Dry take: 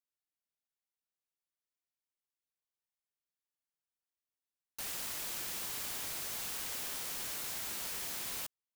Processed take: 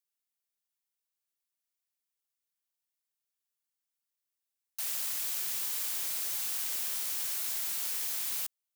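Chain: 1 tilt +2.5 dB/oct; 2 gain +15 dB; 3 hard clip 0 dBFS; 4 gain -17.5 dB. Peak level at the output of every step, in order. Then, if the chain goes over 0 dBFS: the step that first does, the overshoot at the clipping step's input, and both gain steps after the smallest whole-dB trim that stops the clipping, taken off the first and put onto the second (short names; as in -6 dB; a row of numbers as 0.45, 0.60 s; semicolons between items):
-18.5, -3.5, -3.5, -21.0 dBFS; no overload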